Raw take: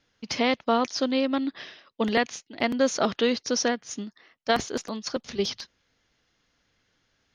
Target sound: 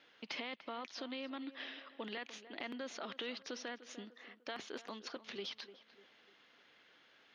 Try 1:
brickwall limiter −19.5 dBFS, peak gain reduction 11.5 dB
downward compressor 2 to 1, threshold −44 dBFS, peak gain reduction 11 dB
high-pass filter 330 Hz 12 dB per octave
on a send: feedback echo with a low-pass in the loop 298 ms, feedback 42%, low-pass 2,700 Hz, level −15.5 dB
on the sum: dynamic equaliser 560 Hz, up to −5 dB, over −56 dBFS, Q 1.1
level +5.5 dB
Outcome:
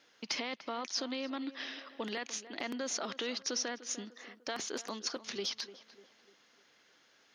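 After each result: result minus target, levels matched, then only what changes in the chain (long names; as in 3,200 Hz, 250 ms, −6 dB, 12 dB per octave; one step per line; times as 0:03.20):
8,000 Hz band +10.5 dB; downward compressor: peak gain reduction −6 dB
add after high-pass filter: high shelf with overshoot 4,500 Hz −10 dB, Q 1.5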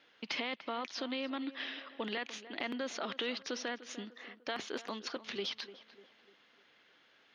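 downward compressor: peak gain reduction −6 dB
change: downward compressor 2 to 1, threshold −56 dBFS, peak gain reduction 17 dB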